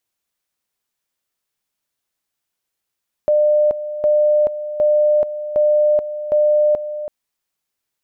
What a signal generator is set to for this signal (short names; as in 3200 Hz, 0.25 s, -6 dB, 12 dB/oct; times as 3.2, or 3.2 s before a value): two-level tone 600 Hz -11 dBFS, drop 12 dB, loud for 0.43 s, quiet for 0.33 s, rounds 5